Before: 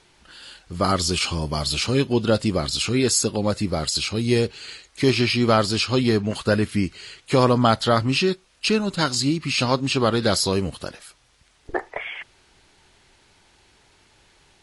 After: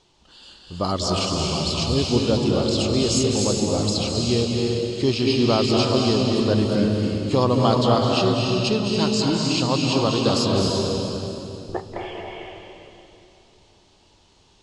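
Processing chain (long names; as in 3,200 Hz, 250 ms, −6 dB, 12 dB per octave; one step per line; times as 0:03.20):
low-pass filter 7,600 Hz 24 dB per octave
flat-topped bell 1,800 Hz −9.5 dB 1 octave
convolution reverb RT60 2.8 s, pre-delay 194 ms, DRR −1 dB
level −2.5 dB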